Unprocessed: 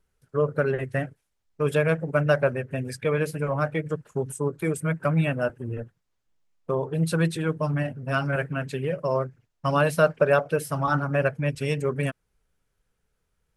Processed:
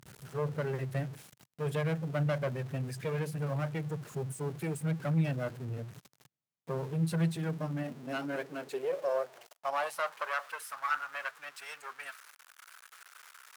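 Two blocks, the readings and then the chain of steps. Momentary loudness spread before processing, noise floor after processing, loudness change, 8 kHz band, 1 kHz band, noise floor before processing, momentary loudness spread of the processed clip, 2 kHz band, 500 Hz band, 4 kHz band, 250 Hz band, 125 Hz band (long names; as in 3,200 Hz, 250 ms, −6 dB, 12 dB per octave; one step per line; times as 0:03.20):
9 LU, −72 dBFS, −9.5 dB, −7.5 dB, −8.0 dB, −76 dBFS, 20 LU, −9.5 dB, −11.5 dB, −7.0 dB, −8.0 dB, −7.0 dB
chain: converter with a step at zero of −33 dBFS
tube saturation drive 18 dB, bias 0.75
high-pass filter sweep 130 Hz → 1,300 Hz, 0:07.13–0:10.49
level −8 dB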